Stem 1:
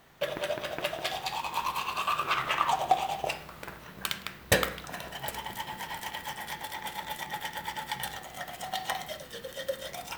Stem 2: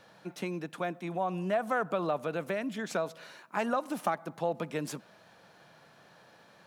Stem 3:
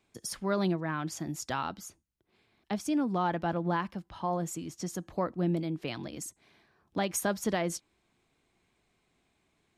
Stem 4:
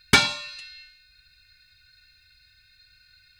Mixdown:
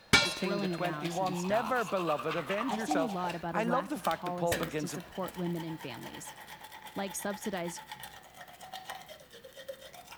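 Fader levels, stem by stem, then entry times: -10.0, -1.0, -6.0, -6.5 dB; 0.00, 0.00, 0.00, 0.00 s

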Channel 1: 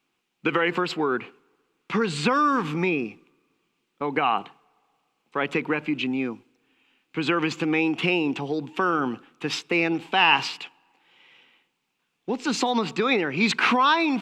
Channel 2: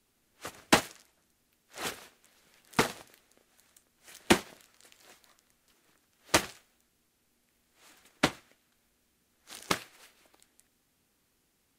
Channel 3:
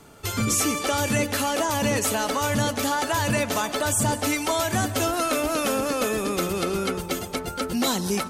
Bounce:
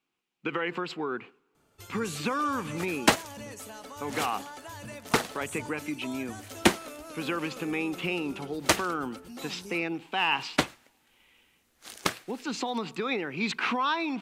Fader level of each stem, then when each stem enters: -8.0, +1.5, -19.0 dB; 0.00, 2.35, 1.55 s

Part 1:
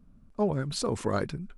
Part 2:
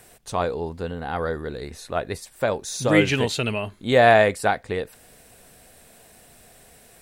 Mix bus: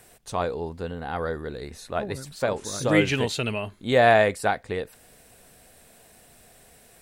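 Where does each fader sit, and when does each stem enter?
-9.5, -2.5 dB; 1.60, 0.00 s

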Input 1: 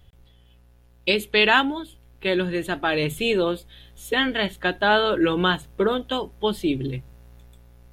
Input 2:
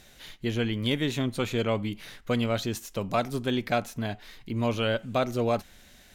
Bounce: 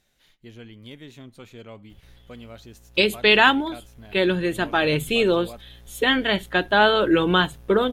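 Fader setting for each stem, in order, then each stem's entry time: +2.0, -15.0 dB; 1.90, 0.00 s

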